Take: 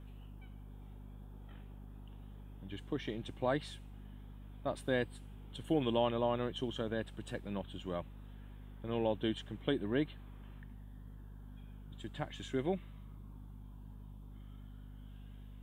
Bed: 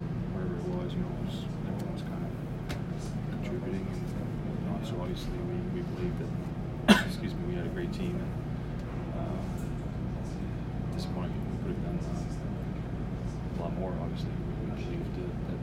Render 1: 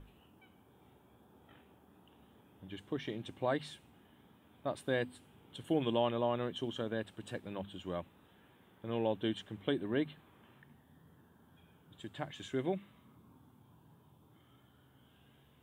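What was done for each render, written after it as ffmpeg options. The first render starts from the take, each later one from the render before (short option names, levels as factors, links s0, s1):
-af "bandreject=f=50:t=h:w=6,bandreject=f=100:t=h:w=6,bandreject=f=150:t=h:w=6,bandreject=f=200:t=h:w=6,bandreject=f=250:t=h:w=6"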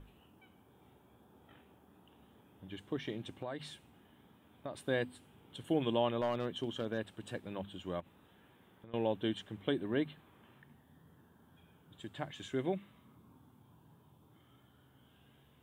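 -filter_complex "[0:a]asettb=1/sr,asplit=3[s0][s1][s2];[s0]atrim=end=3.324[s3];[s1]atrim=start=3.32:end=4.78,asetpts=PTS-STARTPTS,afade=t=in:d=0.004:c=qsin,afade=t=out:st=1.456:d=0.004:c=qsin,acompressor=threshold=0.0141:ratio=5:attack=3.2:release=140:knee=1:detection=peak[s4];[s2]atrim=start=4.776[s5];[s3][s4]acrossfade=d=0.004:c1=hsin:c2=qsin[s6];[s6][s5]acrossfade=d=0.004:c1=qsin:c2=hsin,asettb=1/sr,asplit=3[s7][s8][s9];[s7]atrim=end=6.214[s10];[s8]atrim=start=6.21:end=6.98,asetpts=PTS-STARTPTS,afade=t=in:d=0.004:c=qsin,afade=t=out:st=0.766:d=0.004:c=qsin,asoftclip=type=hard:threshold=0.0422[s11];[s9]atrim=start=6.976[s12];[s10][s11]acrossfade=d=0.004:c1=hsin:c2=qsin[s13];[s13][s12]acrossfade=d=0.004:c1=qsin:c2=hsin,asettb=1/sr,asplit=3[s14][s15][s16];[s14]atrim=end=8.004[s17];[s15]atrim=start=8:end=8.94,asetpts=PTS-STARTPTS,afade=t=in:d=0.004:c=qsin,afade=t=out:st=0.936:d=0.004:c=qsin,acompressor=threshold=0.00316:ratio=6:attack=3.2:release=140:knee=1:detection=peak[s18];[s16]atrim=start=8.936[s19];[s17][s18]acrossfade=d=0.004:c1=hsin:c2=qsin[s20];[s20][s19]acrossfade=d=0.004:c1=qsin:c2=hsin"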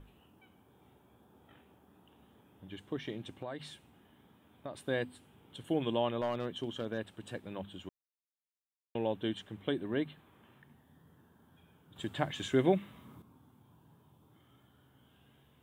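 -filter_complex "[0:a]asplit=5[s0][s1][s2][s3][s4];[s0]atrim=end=7.89,asetpts=PTS-STARTPTS,afade=t=out:st=7.886:d=0.004:c=hsin[s5];[s1]atrim=start=7.89:end=8.95,asetpts=PTS-STARTPTS,volume=0[s6];[s2]atrim=start=8.95:end=11.962,asetpts=PTS-STARTPTS,afade=t=in:d=0.004:c=hsin[s7];[s3]atrim=start=11.958:end=13.222,asetpts=PTS-STARTPTS,volume=2.51[s8];[s4]atrim=start=13.218[s9];[s5][s6][s7]concat=n=3:v=0:a=1[s10];[s10][s8]acrossfade=d=0.004:c1=hsin:c2=hsin[s11];[s11][s9]acrossfade=d=0.004:c1=hsin:c2=hsin"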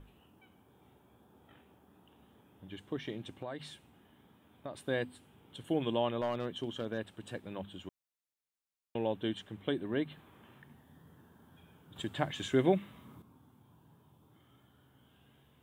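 -filter_complex "[0:a]asplit=3[s0][s1][s2];[s0]atrim=end=10.112[s3];[s1]atrim=start=10.108:end=12.022,asetpts=PTS-STARTPTS,volume=1.5[s4];[s2]atrim=start=12.018[s5];[s3][s4]acrossfade=d=0.004:c1=hsin:c2=hsin[s6];[s6][s5]acrossfade=d=0.004:c1=hsin:c2=hsin"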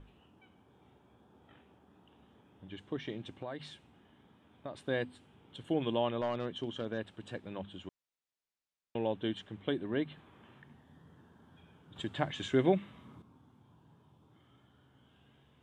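-af "lowpass=6400"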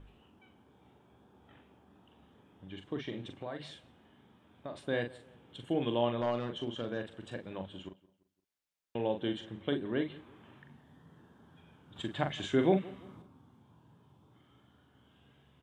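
-filter_complex "[0:a]asplit=2[s0][s1];[s1]adelay=42,volume=0.447[s2];[s0][s2]amix=inputs=2:normalize=0,asplit=2[s3][s4];[s4]adelay=171,lowpass=f=2300:p=1,volume=0.0944,asplit=2[s5][s6];[s6]adelay=171,lowpass=f=2300:p=1,volume=0.4,asplit=2[s7][s8];[s8]adelay=171,lowpass=f=2300:p=1,volume=0.4[s9];[s3][s5][s7][s9]amix=inputs=4:normalize=0"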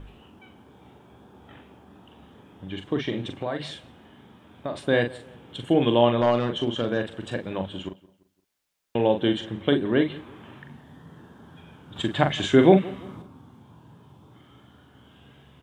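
-af "volume=3.76"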